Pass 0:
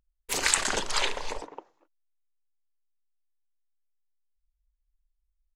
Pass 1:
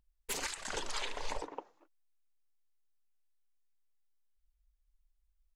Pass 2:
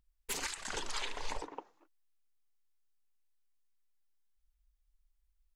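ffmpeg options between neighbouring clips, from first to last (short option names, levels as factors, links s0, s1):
-af "acompressor=threshold=0.0355:ratio=6,flanger=delay=1:depth=3.9:regen=-40:speed=1.5:shape=triangular,alimiter=level_in=1.68:limit=0.0631:level=0:latency=1:release=462,volume=0.596,volume=1.58"
-af "equalizer=f=570:w=2.3:g=-4.5"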